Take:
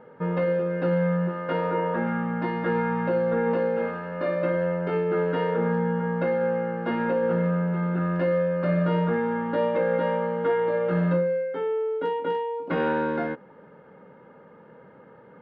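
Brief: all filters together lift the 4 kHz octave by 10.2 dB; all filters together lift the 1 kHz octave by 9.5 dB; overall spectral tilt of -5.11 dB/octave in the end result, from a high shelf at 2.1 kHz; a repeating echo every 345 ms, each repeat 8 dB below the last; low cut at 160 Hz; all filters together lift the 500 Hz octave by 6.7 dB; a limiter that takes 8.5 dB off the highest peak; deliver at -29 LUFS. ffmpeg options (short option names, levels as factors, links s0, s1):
-af "highpass=160,equalizer=f=500:t=o:g=5,equalizer=f=1000:t=o:g=7.5,highshelf=f=2100:g=8.5,equalizer=f=4000:t=o:g=6.5,alimiter=limit=0.168:level=0:latency=1,aecho=1:1:345|690|1035|1380|1725:0.398|0.159|0.0637|0.0255|0.0102,volume=0.473"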